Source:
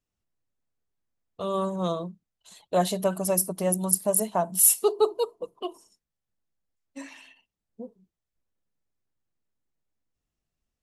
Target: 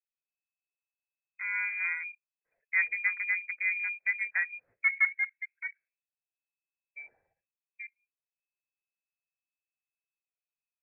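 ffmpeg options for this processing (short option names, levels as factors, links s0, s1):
-af "afwtdn=0.02,lowpass=f=2200:t=q:w=0.5098,lowpass=f=2200:t=q:w=0.6013,lowpass=f=2200:t=q:w=0.9,lowpass=f=2200:t=q:w=2.563,afreqshift=-2600,equalizer=f=125:t=o:w=1:g=3,equalizer=f=250:t=o:w=1:g=-4,equalizer=f=500:t=o:w=1:g=9,equalizer=f=1000:t=o:w=1:g=-7,volume=0.668"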